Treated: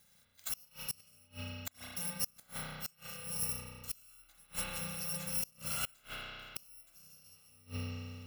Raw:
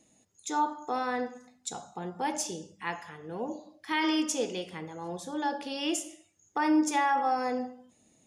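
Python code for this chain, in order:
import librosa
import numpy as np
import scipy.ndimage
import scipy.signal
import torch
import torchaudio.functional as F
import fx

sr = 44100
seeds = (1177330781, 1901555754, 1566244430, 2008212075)

y = fx.bit_reversed(x, sr, seeds[0], block=128)
y = fx.rev_spring(y, sr, rt60_s=2.4, pass_ms=(32,), chirp_ms=60, drr_db=-3.5)
y = fx.gate_flip(y, sr, shuts_db=-22.0, range_db=-31)
y = F.gain(torch.from_numpy(y), -2.0).numpy()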